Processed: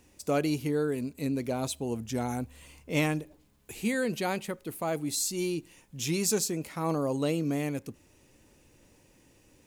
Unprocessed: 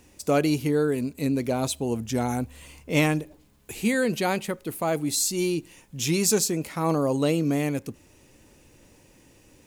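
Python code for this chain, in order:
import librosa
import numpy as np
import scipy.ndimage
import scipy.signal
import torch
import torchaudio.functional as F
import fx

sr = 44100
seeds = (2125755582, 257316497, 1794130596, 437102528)

y = x * librosa.db_to_amplitude(-5.5)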